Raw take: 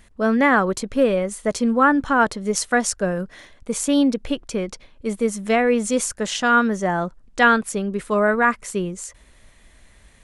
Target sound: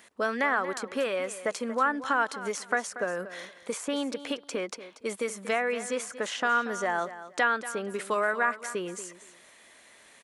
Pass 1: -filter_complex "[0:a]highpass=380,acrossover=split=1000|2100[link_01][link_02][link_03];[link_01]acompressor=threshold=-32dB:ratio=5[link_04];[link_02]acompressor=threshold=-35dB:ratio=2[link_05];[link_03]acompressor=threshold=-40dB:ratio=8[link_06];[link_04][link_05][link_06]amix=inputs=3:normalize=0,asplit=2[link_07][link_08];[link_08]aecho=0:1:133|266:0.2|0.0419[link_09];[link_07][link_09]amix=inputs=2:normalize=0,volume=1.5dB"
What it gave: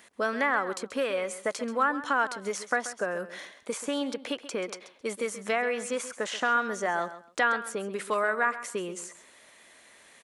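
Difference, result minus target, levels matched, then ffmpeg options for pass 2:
echo 102 ms early
-filter_complex "[0:a]highpass=380,acrossover=split=1000|2100[link_01][link_02][link_03];[link_01]acompressor=threshold=-32dB:ratio=5[link_04];[link_02]acompressor=threshold=-35dB:ratio=2[link_05];[link_03]acompressor=threshold=-40dB:ratio=8[link_06];[link_04][link_05][link_06]amix=inputs=3:normalize=0,asplit=2[link_07][link_08];[link_08]aecho=0:1:235|470:0.2|0.0419[link_09];[link_07][link_09]amix=inputs=2:normalize=0,volume=1.5dB"

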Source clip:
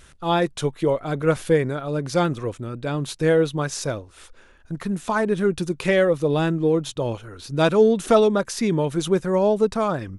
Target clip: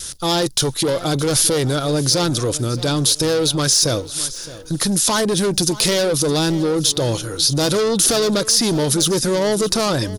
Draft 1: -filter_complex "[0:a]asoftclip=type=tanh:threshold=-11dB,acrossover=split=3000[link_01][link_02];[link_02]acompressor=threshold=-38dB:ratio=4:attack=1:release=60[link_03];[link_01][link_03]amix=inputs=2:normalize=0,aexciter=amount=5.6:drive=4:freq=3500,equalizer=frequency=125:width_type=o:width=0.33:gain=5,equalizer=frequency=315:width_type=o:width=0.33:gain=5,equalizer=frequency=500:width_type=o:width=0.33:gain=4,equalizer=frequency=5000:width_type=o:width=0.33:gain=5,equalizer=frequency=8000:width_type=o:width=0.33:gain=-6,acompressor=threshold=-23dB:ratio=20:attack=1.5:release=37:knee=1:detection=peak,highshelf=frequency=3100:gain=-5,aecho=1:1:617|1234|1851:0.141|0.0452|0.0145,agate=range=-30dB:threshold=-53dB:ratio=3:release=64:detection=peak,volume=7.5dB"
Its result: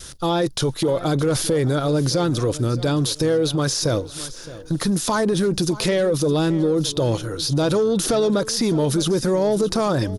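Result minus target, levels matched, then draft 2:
soft clipping: distortion −11 dB; 8,000 Hz band −7.0 dB
-filter_complex "[0:a]asoftclip=type=tanh:threshold=-21dB,acrossover=split=3000[link_01][link_02];[link_02]acompressor=threshold=-38dB:ratio=4:attack=1:release=60[link_03];[link_01][link_03]amix=inputs=2:normalize=0,aexciter=amount=5.6:drive=4:freq=3500,equalizer=frequency=125:width_type=o:width=0.33:gain=5,equalizer=frequency=315:width_type=o:width=0.33:gain=5,equalizer=frequency=500:width_type=o:width=0.33:gain=4,equalizer=frequency=5000:width_type=o:width=0.33:gain=5,equalizer=frequency=8000:width_type=o:width=0.33:gain=-6,acompressor=threshold=-23dB:ratio=20:attack=1.5:release=37:knee=1:detection=peak,highshelf=frequency=3100:gain=6.5,aecho=1:1:617|1234|1851:0.141|0.0452|0.0145,agate=range=-30dB:threshold=-53dB:ratio=3:release=64:detection=peak,volume=7.5dB"

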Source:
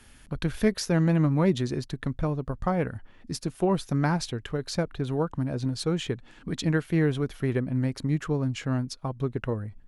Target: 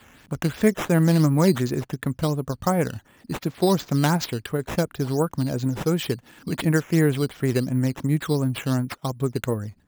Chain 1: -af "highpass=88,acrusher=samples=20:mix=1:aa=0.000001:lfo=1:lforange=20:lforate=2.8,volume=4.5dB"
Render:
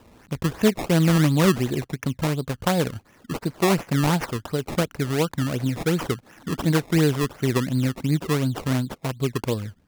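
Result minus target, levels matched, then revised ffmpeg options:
sample-and-hold swept by an LFO: distortion +7 dB
-af "highpass=88,acrusher=samples=7:mix=1:aa=0.000001:lfo=1:lforange=7:lforate=2.8,volume=4.5dB"

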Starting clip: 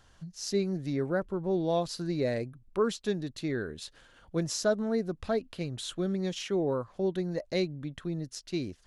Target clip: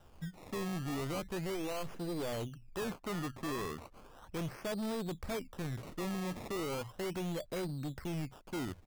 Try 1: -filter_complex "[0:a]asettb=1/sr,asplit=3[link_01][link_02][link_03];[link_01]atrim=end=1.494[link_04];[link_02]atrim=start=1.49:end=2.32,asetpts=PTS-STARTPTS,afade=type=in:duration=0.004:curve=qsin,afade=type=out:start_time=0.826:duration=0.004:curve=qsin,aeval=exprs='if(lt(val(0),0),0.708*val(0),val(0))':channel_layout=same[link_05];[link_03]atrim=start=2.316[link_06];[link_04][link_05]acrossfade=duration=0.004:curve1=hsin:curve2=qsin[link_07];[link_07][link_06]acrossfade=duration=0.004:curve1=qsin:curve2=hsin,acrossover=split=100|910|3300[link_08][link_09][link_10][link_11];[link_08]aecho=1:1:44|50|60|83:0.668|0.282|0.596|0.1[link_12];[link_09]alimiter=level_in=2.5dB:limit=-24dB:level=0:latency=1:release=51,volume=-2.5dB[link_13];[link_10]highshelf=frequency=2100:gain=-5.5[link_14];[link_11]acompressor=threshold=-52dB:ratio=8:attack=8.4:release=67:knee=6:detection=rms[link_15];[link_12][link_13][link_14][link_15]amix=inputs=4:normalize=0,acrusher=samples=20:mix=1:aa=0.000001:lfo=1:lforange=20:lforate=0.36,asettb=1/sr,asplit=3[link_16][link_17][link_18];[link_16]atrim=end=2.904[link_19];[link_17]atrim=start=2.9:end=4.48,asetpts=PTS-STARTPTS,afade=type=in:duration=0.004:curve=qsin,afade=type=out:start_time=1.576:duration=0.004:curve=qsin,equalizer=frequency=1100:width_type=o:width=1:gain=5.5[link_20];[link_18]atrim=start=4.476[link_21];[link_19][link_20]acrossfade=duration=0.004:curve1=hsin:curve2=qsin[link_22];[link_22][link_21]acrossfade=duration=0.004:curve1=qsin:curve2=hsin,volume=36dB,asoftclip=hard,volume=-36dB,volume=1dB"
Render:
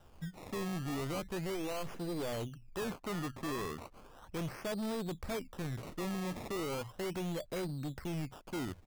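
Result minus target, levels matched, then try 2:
downward compressor: peak gain reduction −5.5 dB
-filter_complex "[0:a]asettb=1/sr,asplit=3[link_01][link_02][link_03];[link_01]atrim=end=1.494[link_04];[link_02]atrim=start=1.49:end=2.32,asetpts=PTS-STARTPTS,afade=type=in:duration=0.004:curve=qsin,afade=type=out:start_time=0.826:duration=0.004:curve=qsin,aeval=exprs='if(lt(val(0),0),0.708*val(0),val(0))':channel_layout=same[link_05];[link_03]atrim=start=2.316[link_06];[link_04][link_05]acrossfade=duration=0.004:curve1=hsin:curve2=qsin[link_07];[link_07][link_06]acrossfade=duration=0.004:curve1=qsin:curve2=hsin,acrossover=split=100|910|3300[link_08][link_09][link_10][link_11];[link_08]aecho=1:1:44|50|60|83:0.668|0.282|0.596|0.1[link_12];[link_09]alimiter=level_in=2.5dB:limit=-24dB:level=0:latency=1:release=51,volume=-2.5dB[link_13];[link_10]highshelf=frequency=2100:gain=-5.5[link_14];[link_11]acompressor=threshold=-58.5dB:ratio=8:attack=8.4:release=67:knee=6:detection=rms[link_15];[link_12][link_13][link_14][link_15]amix=inputs=4:normalize=0,acrusher=samples=20:mix=1:aa=0.000001:lfo=1:lforange=20:lforate=0.36,asettb=1/sr,asplit=3[link_16][link_17][link_18];[link_16]atrim=end=2.904[link_19];[link_17]atrim=start=2.9:end=4.48,asetpts=PTS-STARTPTS,afade=type=in:duration=0.004:curve=qsin,afade=type=out:start_time=1.576:duration=0.004:curve=qsin,equalizer=frequency=1100:width_type=o:width=1:gain=5.5[link_20];[link_18]atrim=start=4.476[link_21];[link_19][link_20]acrossfade=duration=0.004:curve1=hsin:curve2=qsin[link_22];[link_22][link_21]acrossfade=duration=0.004:curve1=qsin:curve2=hsin,volume=36dB,asoftclip=hard,volume=-36dB,volume=1dB"

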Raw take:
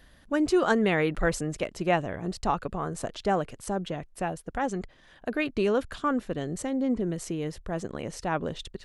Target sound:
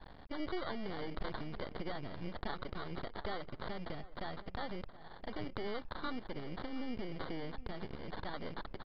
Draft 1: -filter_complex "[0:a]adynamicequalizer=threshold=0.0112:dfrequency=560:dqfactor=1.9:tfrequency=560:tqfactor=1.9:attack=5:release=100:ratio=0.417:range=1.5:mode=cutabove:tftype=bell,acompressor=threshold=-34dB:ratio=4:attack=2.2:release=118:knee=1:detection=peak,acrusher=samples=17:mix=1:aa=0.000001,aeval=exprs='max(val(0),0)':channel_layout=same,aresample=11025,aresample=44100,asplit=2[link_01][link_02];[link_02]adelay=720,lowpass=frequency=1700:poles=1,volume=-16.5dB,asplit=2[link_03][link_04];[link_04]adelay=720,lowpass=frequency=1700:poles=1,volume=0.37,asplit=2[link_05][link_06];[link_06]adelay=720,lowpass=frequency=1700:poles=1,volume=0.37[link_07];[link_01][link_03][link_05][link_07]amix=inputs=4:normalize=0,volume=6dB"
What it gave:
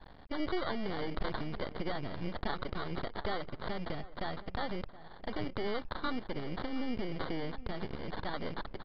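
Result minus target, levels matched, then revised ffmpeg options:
downward compressor: peak gain reduction −5 dB
-filter_complex "[0:a]adynamicequalizer=threshold=0.0112:dfrequency=560:dqfactor=1.9:tfrequency=560:tqfactor=1.9:attack=5:release=100:ratio=0.417:range=1.5:mode=cutabove:tftype=bell,acompressor=threshold=-40.5dB:ratio=4:attack=2.2:release=118:knee=1:detection=peak,acrusher=samples=17:mix=1:aa=0.000001,aeval=exprs='max(val(0),0)':channel_layout=same,aresample=11025,aresample=44100,asplit=2[link_01][link_02];[link_02]adelay=720,lowpass=frequency=1700:poles=1,volume=-16.5dB,asplit=2[link_03][link_04];[link_04]adelay=720,lowpass=frequency=1700:poles=1,volume=0.37,asplit=2[link_05][link_06];[link_06]adelay=720,lowpass=frequency=1700:poles=1,volume=0.37[link_07];[link_01][link_03][link_05][link_07]amix=inputs=4:normalize=0,volume=6dB"

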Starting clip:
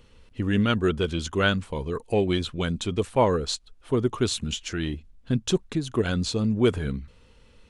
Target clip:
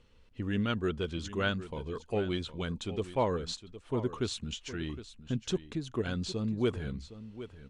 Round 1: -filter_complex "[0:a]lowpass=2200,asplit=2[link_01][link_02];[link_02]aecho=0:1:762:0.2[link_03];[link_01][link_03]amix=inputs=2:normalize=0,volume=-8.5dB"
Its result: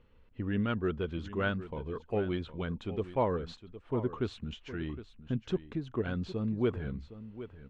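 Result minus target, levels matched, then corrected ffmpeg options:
8,000 Hz band −18.0 dB
-filter_complex "[0:a]lowpass=7600,asplit=2[link_01][link_02];[link_02]aecho=0:1:762:0.2[link_03];[link_01][link_03]amix=inputs=2:normalize=0,volume=-8.5dB"

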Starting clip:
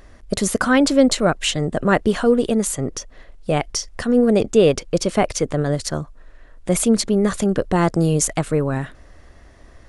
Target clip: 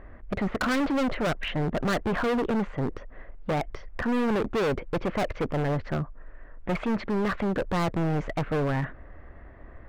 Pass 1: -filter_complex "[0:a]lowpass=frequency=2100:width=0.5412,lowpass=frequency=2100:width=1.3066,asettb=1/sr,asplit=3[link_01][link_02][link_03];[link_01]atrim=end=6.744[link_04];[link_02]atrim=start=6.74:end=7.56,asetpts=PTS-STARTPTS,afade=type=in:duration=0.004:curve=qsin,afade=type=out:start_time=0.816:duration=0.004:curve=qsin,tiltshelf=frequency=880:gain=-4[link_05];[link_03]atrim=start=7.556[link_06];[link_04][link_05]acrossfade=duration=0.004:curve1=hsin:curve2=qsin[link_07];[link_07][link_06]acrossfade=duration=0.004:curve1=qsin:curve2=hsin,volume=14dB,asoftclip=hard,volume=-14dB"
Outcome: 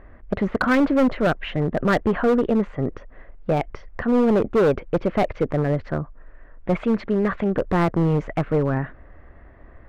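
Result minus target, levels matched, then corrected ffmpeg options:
gain into a clipping stage and back: distortion −7 dB
-filter_complex "[0:a]lowpass=frequency=2100:width=0.5412,lowpass=frequency=2100:width=1.3066,asettb=1/sr,asplit=3[link_01][link_02][link_03];[link_01]atrim=end=6.744[link_04];[link_02]atrim=start=6.74:end=7.56,asetpts=PTS-STARTPTS,afade=type=in:duration=0.004:curve=qsin,afade=type=out:start_time=0.816:duration=0.004:curve=qsin,tiltshelf=frequency=880:gain=-4[link_05];[link_03]atrim=start=7.556[link_06];[link_04][link_05]acrossfade=duration=0.004:curve1=hsin:curve2=qsin[link_07];[link_07][link_06]acrossfade=duration=0.004:curve1=qsin:curve2=hsin,volume=23.5dB,asoftclip=hard,volume=-23.5dB"

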